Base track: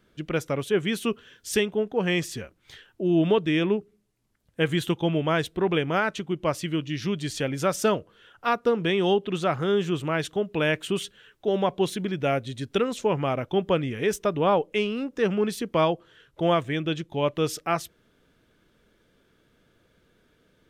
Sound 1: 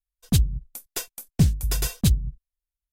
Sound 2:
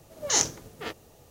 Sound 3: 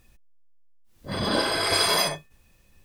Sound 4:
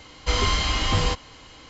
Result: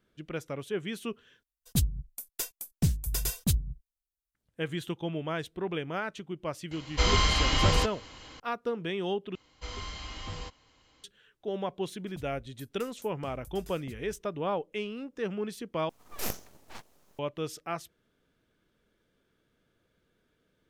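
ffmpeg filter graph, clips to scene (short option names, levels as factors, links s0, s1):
-filter_complex "[1:a]asplit=2[s0][s1];[4:a]asplit=2[s2][s3];[0:a]volume=0.335[s4];[s0]highshelf=f=7500:g=7.5[s5];[s1]acompressor=threshold=0.0282:ratio=6:attack=3.2:release=140:knee=1:detection=peak[s6];[2:a]aeval=exprs='abs(val(0))':c=same[s7];[s4]asplit=4[s8][s9][s10][s11];[s8]atrim=end=1.434[s12];[s5]atrim=end=2.92,asetpts=PTS-STARTPTS,volume=0.422[s13];[s9]atrim=start=4.346:end=9.354[s14];[s3]atrim=end=1.69,asetpts=PTS-STARTPTS,volume=0.133[s15];[s10]atrim=start=11.036:end=15.894[s16];[s7]atrim=end=1.3,asetpts=PTS-STARTPTS,volume=0.398[s17];[s11]atrim=start=17.186[s18];[s2]atrim=end=1.69,asetpts=PTS-STARTPTS,volume=0.794,afade=t=in:d=0.004:c=hsin,afade=t=out:st=1.686:d=0.004:c=hsin,adelay=6710[s19];[s6]atrim=end=2.92,asetpts=PTS-STARTPTS,volume=0.188,afade=t=in:d=0.004:c=hsin,afade=t=out:st=2.916:d=0.004:c=hsin,adelay=11840[s20];[s12][s13]acrossfade=d=0.004:c1=hsin:c2=hsin[s21];[s21][s14]acrossfade=d=0.004:c1=hsin:c2=hsin[s22];[s22][s15]acrossfade=d=0.004:c1=hsin:c2=hsin[s23];[s23][s16]acrossfade=d=0.004:c1=hsin:c2=hsin[s24];[s24][s17]acrossfade=d=0.004:c1=hsin:c2=hsin[s25];[s25][s18]acrossfade=d=0.004:c1=hsin:c2=hsin[s26];[s26][s19][s20]amix=inputs=3:normalize=0"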